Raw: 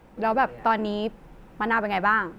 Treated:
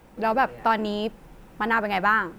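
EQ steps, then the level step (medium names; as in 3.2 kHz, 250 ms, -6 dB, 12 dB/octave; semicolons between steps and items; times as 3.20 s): treble shelf 4.5 kHz +8.5 dB; 0.0 dB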